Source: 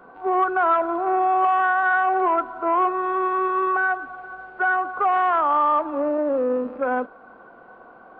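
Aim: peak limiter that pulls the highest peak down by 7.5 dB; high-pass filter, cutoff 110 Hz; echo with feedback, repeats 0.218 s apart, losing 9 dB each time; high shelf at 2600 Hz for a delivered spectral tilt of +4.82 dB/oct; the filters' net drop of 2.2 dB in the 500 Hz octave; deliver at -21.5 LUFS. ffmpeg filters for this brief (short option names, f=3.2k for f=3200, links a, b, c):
-af "highpass=110,equalizer=f=500:t=o:g=-3.5,highshelf=f=2.6k:g=8,alimiter=limit=-18.5dB:level=0:latency=1,aecho=1:1:218|436|654|872:0.355|0.124|0.0435|0.0152,volume=3.5dB"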